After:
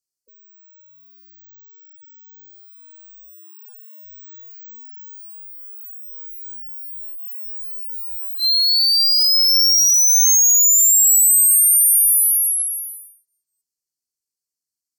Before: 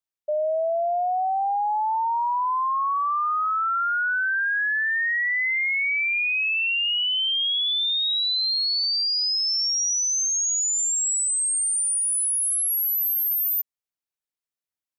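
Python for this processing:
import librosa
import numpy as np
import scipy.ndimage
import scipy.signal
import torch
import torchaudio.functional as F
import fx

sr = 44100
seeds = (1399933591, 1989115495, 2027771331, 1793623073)

y = fx.peak_eq(x, sr, hz=7600.0, db=11.0, octaves=2.3)
y = np.repeat(scipy.signal.resample_poly(y, 1, 2), 2)[:len(y)]
y = fx.brickwall_bandstop(y, sr, low_hz=510.0, high_hz=4100.0)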